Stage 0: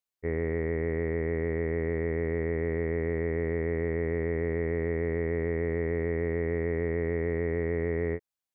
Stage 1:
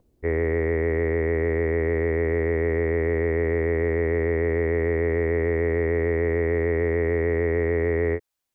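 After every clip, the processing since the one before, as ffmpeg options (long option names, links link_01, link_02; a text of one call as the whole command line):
ffmpeg -i in.wav -filter_complex "[0:a]equalizer=frequency=170:width=1.6:gain=-10,acrossover=split=350|500[link_01][link_02][link_03];[link_01]acompressor=mode=upward:threshold=-42dB:ratio=2.5[link_04];[link_04][link_02][link_03]amix=inputs=3:normalize=0,volume=8dB" out.wav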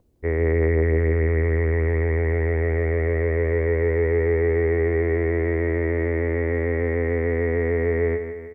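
ffmpeg -i in.wav -af "equalizer=frequency=87:width=2.9:gain=4,aecho=1:1:159|318|477|636|795|954:0.355|0.188|0.0997|0.0528|0.028|0.0148" out.wav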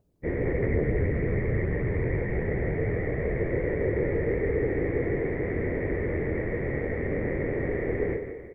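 ffmpeg -i in.wav -af "afftfilt=real='hypot(re,im)*cos(2*PI*random(0))':imag='hypot(re,im)*sin(2*PI*random(1))':win_size=512:overlap=0.75" out.wav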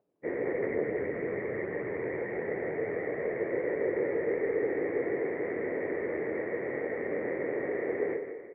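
ffmpeg -i in.wav -af "highpass=370,lowpass=2000" out.wav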